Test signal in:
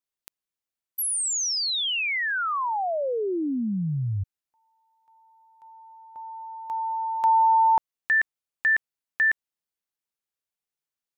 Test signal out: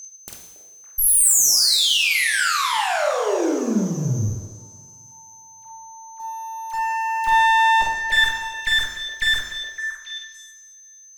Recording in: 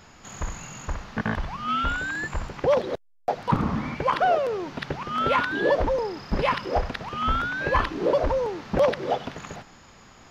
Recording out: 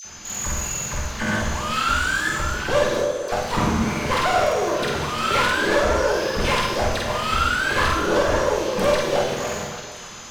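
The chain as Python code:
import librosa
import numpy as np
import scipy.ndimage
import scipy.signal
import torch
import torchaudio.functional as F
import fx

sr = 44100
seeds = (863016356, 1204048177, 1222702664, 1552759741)

p1 = fx.high_shelf(x, sr, hz=3800.0, db=11.5)
p2 = fx.dispersion(p1, sr, late='lows', ms=49.0, hz=1500.0)
p3 = 10.0 ** (-20.5 / 20.0) * np.tanh(p2 / 10.0 ** (-20.5 / 20.0))
p4 = p2 + (p3 * 10.0 ** (-11.5 / 20.0))
p5 = p4 + 10.0 ** (-36.0 / 20.0) * np.sin(2.0 * np.pi * 6200.0 * np.arange(len(p4)) / sr)
p6 = fx.clip_asym(p5, sr, top_db=-30.0, bottom_db=-13.5)
p7 = fx.doubler(p6, sr, ms=48.0, db=-2.0)
p8 = p7 + fx.echo_stepped(p7, sr, ms=281, hz=500.0, octaves=1.4, feedback_pct=70, wet_db=-4.5, dry=0)
y = fx.rev_double_slope(p8, sr, seeds[0], early_s=0.99, late_s=2.6, knee_db=-18, drr_db=0.5)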